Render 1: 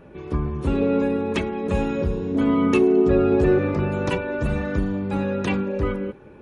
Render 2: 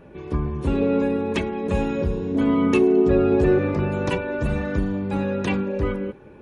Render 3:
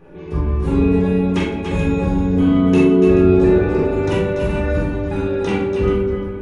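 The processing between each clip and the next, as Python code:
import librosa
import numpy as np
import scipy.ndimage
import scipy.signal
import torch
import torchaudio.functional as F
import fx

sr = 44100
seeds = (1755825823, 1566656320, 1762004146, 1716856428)

y1 = fx.notch(x, sr, hz=1300.0, q=13.0)
y2 = fx.echo_multitap(y1, sr, ms=(44, 164, 287, 298, 434), db=(-3.0, -17.0, -8.0, -9.0, -12.0))
y2 = fx.room_shoebox(y2, sr, seeds[0], volume_m3=630.0, walls='furnished', distance_m=3.9)
y2 = F.gain(torch.from_numpy(y2), -3.5).numpy()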